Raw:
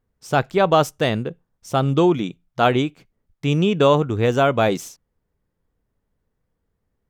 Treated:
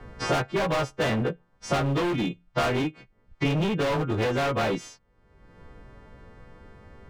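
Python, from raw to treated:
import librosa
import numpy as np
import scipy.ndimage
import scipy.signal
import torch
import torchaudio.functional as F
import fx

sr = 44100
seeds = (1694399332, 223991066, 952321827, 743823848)

y = fx.freq_snap(x, sr, grid_st=2)
y = scipy.signal.sosfilt(scipy.signal.butter(2, 2100.0, 'lowpass', fs=sr, output='sos'), y)
y = fx.rider(y, sr, range_db=3, speed_s=0.5)
y = np.clip(10.0 ** (23.0 / 20.0) * y, -1.0, 1.0) / 10.0 ** (23.0 / 20.0)
y = fx.band_squash(y, sr, depth_pct=100)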